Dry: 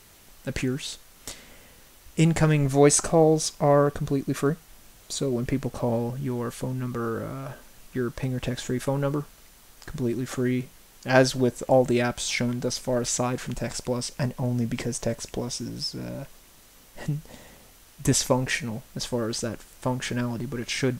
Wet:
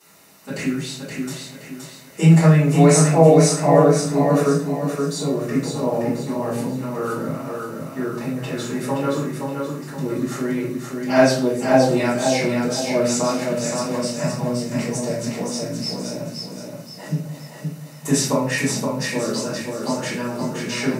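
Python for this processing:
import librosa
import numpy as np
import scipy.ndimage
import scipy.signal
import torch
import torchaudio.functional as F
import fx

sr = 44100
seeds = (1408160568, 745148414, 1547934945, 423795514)

y = scipy.signal.sosfilt(scipy.signal.butter(4, 150.0, 'highpass', fs=sr, output='sos'), x)
y = fx.notch(y, sr, hz=3300.0, q=6.7)
y = fx.echo_feedback(y, sr, ms=522, feedback_pct=40, wet_db=-4.5)
y = fx.room_shoebox(y, sr, seeds[0], volume_m3=56.0, walls='mixed', distance_m=3.2)
y = y * 10.0 ** (-9.5 / 20.0)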